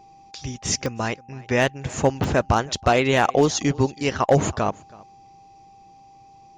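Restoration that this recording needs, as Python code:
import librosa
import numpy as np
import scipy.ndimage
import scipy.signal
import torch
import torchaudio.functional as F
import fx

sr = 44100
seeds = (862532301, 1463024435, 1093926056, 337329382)

y = fx.fix_declip(x, sr, threshold_db=-8.5)
y = fx.fix_declick_ar(y, sr, threshold=10.0)
y = fx.notch(y, sr, hz=790.0, q=30.0)
y = fx.fix_echo_inverse(y, sr, delay_ms=325, level_db=-23.5)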